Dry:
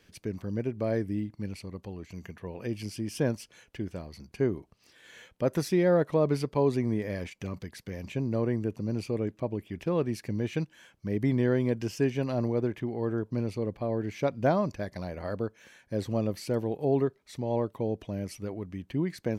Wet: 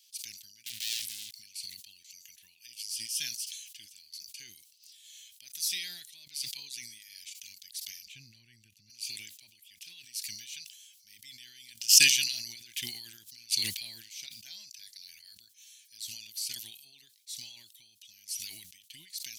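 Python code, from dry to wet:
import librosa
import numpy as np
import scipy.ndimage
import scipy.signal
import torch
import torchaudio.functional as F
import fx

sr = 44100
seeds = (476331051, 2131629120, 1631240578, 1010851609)

y = fx.leveller(x, sr, passes=5, at=(0.66, 1.34))
y = fx.bass_treble(y, sr, bass_db=13, treble_db=-11, at=(8.06, 8.9))
y = fx.pre_swell(y, sr, db_per_s=42.0, at=(11.77, 13.75))
y = scipy.signal.sosfilt(scipy.signal.cheby2(4, 50, 1300.0, 'highpass', fs=sr, output='sos'), y)
y = fx.high_shelf(y, sr, hz=5600.0, db=8.5)
y = fx.sustainer(y, sr, db_per_s=53.0)
y = y * 10.0 ** (4.0 / 20.0)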